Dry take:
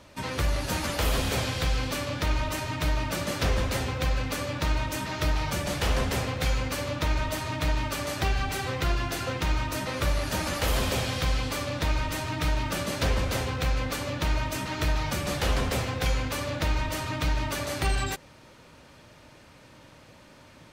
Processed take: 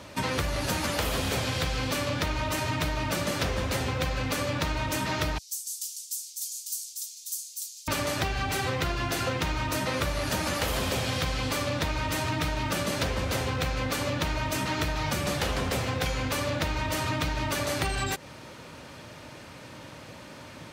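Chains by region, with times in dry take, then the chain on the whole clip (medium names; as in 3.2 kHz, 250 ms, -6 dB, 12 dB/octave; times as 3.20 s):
5.38–7.88 s: inverse Chebyshev high-pass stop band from 1.5 kHz, stop band 70 dB + delay 848 ms -4 dB
whole clip: high-pass 70 Hz; compression, threshold -33 dBFS; trim +7.5 dB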